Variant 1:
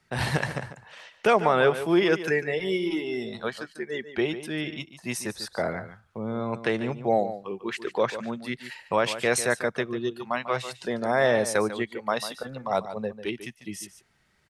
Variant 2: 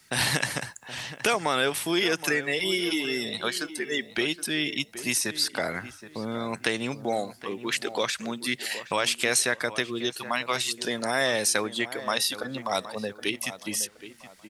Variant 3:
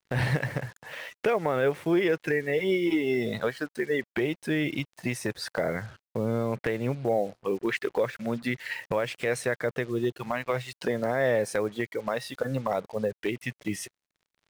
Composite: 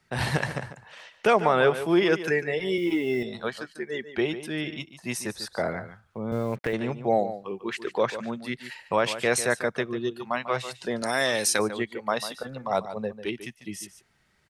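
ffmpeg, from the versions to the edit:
-filter_complex "[2:a]asplit=2[s0][s1];[0:a]asplit=4[s2][s3][s4][s5];[s2]atrim=end=2.782[s6];[s0]atrim=start=2.778:end=3.232[s7];[s3]atrim=start=3.228:end=6.322[s8];[s1]atrim=start=6.318:end=6.732[s9];[s4]atrim=start=6.728:end=11.022[s10];[1:a]atrim=start=11.018:end=11.592[s11];[s5]atrim=start=11.588[s12];[s6][s7]acrossfade=d=0.004:c1=hsin:c2=hsin[s13];[s13][s8]acrossfade=d=0.004:c1=hsin:c2=hsin[s14];[s14][s9]acrossfade=d=0.004:c1=hsin:c2=hsin[s15];[s15][s10]acrossfade=d=0.004:c1=hsin:c2=hsin[s16];[s16][s11]acrossfade=d=0.004:c1=hsin:c2=hsin[s17];[s17][s12]acrossfade=d=0.004:c1=hsin:c2=hsin"

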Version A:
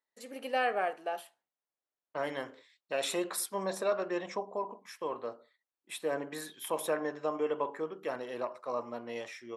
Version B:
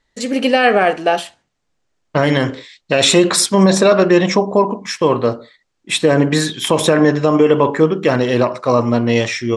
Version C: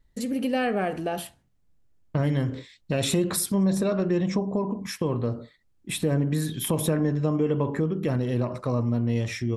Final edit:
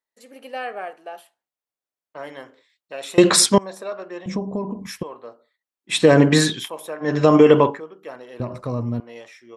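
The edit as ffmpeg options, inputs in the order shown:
-filter_complex "[1:a]asplit=3[s0][s1][s2];[2:a]asplit=2[s3][s4];[0:a]asplit=6[s5][s6][s7][s8][s9][s10];[s5]atrim=end=3.182[s11];[s0]atrim=start=3.178:end=3.582[s12];[s6]atrim=start=3.578:end=4.262[s13];[s3]atrim=start=4.258:end=5.032[s14];[s7]atrim=start=5.028:end=6.01[s15];[s1]atrim=start=5.85:end=6.69[s16];[s8]atrim=start=6.53:end=7.24[s17];[s2]atrim=start=7:end=7.81[s18];[s9]atrim=start=7.57:end=8.402[s19];[s4]atrim=start=8.398:end=9.002[s20];[s10]atrim=start=8.998[s21];[s11][s12]acrossfade=d=0.004:c1=hsin:c2=hsin[s22];[s22][s13]acrossfade=d=0.004:c1=hsin:c2=hsin[s23];[s23][s14]acrossfade=d=0.004:c1=hsin:c2=hsin[s24];[s24][s15]acrossfade=d=0.004:c1=hsin:c2=hsin[s25];[s25][s16]acrossfade=d=0.16:c1=tri:c2=tri[s26];[s26][s17]acrossfade=d=0.16:c1=tri:c2=tri[s27];[s27][s18]acrossfade=d=0.24:c1=tri:c2=tri[s28];[s28][s19]acrossfade=d=0.24:c1=tri:c2=tri[s29];[s29][s20]acrossfade=d=0.004:c1=hsin:c2=hsin[s30];[s30][s21]acrossfade=d=0.004:c1=hsin:c2=hsin"

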